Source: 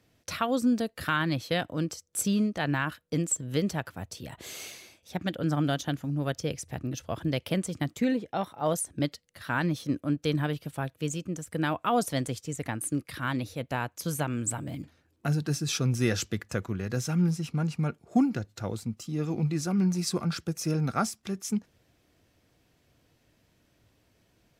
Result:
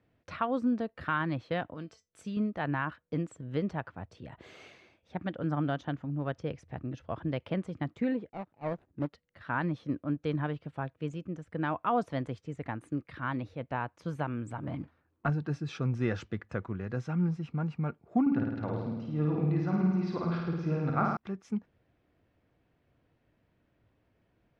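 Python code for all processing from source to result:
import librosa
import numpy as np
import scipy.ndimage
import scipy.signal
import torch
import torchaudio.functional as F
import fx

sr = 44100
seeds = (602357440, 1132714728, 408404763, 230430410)

y = fx.chain(x, sr, fx.high_shelf(hz=2100.0, db=8.5),
    fx.comb_fb(f0_hz=220.0, decay_s=0.18, harmonics='all', damping=0.0, mix_pct=70), at=(1.74, 2.37))
y = fx.chain(y, sr, fx.median_filter(points=41),
    fx.upward_expand(threshold_db=-45.0, expansion=1.5), at=(8.29, 9.13))
y = fx.chain(y, sr, fx.peak_eq(hz=1100.0, db=7.5, octaves=0.83),
    fx.leveller(passes=1), at=(14.63, 15.3))
y = fx.chain(y, sr, fx.lowpass(hz=4800.0, slope=24),
    fx.room_flutter(wall_m=9.1, rt60_s=1.2), at=(18.21, 21.17))
y = scipy.signal.sosfilt(scipy.signal.butter(2, 2100.0, 'lowpass', fs=sr, output='sos'), y)
y = fx.dynamic_eq(y, sr, hz=1000.0, q=1.8, threshold_db=-46.0, ratio=4.0, max_db=4)
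y = y * librosa.db_to_amplitude(-4.0)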